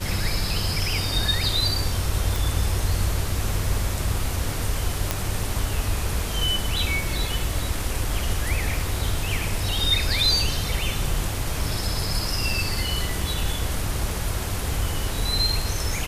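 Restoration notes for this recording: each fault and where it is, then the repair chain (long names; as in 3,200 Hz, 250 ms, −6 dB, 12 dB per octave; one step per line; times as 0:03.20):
0:02.36: click
0:05.11: click −6 dBFS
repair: click removal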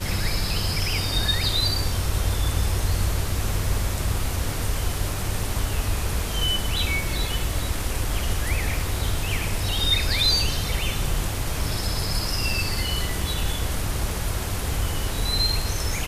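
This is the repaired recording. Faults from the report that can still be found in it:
none of them is left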